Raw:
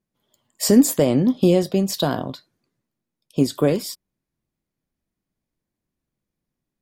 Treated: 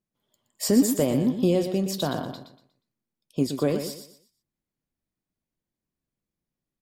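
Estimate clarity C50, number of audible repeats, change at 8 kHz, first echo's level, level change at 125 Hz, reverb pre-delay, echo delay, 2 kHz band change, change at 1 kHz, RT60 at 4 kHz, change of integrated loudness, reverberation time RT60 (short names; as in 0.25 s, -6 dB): none, 3, -5.5 dB, -8.5 dB, -5.5 dB, none, 0.12 s, -5.5 dB, -5.5 dB, none, -5.5 dB, none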